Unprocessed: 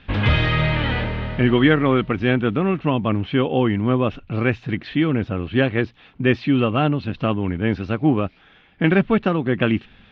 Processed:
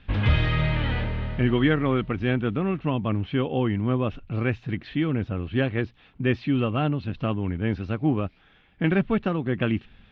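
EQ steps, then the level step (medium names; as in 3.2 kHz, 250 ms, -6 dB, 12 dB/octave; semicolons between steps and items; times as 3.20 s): bass shelf 110 Hz +8.5 dB; -7.0 dB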